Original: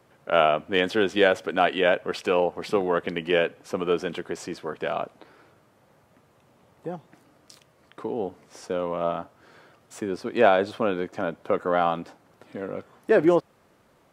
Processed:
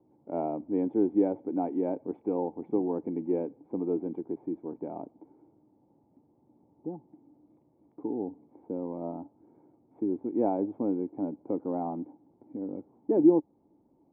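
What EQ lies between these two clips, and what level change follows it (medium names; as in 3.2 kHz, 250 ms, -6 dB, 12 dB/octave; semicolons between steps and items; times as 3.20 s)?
cascade formant filter u; +5.5 dB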